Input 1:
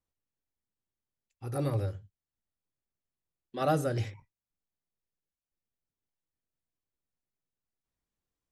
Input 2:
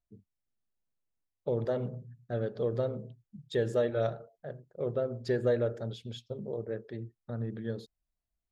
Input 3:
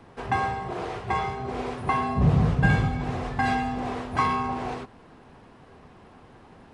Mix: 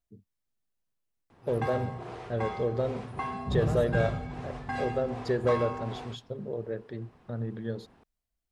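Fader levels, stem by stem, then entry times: -12.0, +1.5, -9.5 dB; 0.00, 0.00, 1.30 s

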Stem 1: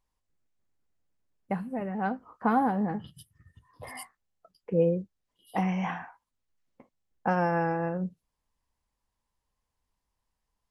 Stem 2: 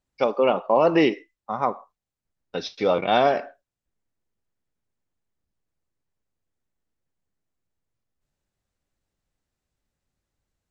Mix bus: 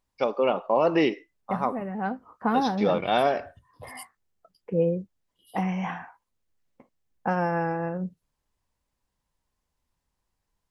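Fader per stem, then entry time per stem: +0.5, -3.5 dB; 0.00, 0.00 s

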